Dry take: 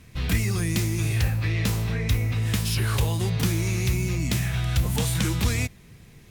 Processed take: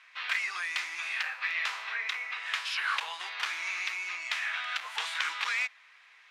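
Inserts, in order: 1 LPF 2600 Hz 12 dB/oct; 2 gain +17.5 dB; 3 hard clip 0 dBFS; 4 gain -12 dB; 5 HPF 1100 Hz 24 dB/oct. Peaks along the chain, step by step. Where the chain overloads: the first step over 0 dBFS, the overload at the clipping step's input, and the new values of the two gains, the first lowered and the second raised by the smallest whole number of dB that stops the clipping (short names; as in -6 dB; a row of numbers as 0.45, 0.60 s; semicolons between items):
-13.5, +4.0, 0.0, -12.0, -13.0 dBFS; step 2, 4.0 dB; step 2 +13.5 dB, step 4 -8 dB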